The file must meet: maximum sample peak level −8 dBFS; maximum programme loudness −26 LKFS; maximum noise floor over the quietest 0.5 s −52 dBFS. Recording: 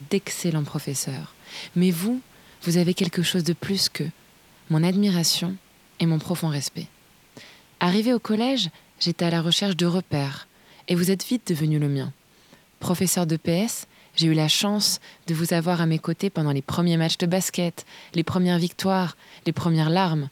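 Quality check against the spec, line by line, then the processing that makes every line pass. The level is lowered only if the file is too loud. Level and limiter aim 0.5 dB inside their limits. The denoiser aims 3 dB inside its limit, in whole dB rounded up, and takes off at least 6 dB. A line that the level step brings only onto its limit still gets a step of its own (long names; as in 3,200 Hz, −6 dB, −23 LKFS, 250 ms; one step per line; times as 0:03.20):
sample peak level −5.0 dBFS: out of spec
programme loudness −23.5 LKFS: out of spec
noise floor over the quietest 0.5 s −55 dBFS: in spec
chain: level −3 dB
brickwall limiter −8.5 dBFS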